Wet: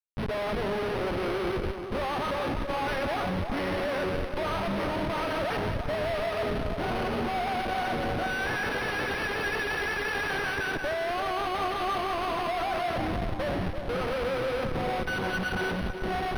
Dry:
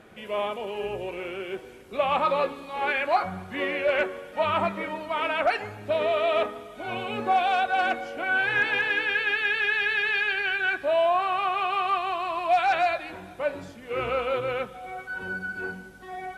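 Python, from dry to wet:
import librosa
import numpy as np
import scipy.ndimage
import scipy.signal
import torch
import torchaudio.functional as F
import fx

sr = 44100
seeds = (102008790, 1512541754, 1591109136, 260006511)

p1 = scipy.signal.sosfilt(scipy.signal.butter(2, 43.0, 'highpass', fs=sr, output='sos'), x)
p2 = fx.notch(p1, sr, hz=2400.0, q=7.7)
p3 = fx.rider(p2, sr, range_db=10, speed_s=0.5)
p4 = p2 + F.gain(torch.from_numpy(p3), -3.0).numpy()
p5 = fx.schmitt(p4, sr, flips_db=-29.0)
p6 = fx.echo_split(p5, sr, split_hz=1300.0, low_ms=336, high_ms=181, feedback_pct=52, wet_db=-7.0)
p7 = np.interp(np.arange(len(p6)), np.arange(len(p6))[::6], p6[::6])
y = F.gain(torch.from_numpy(p7), -7.0).numpy()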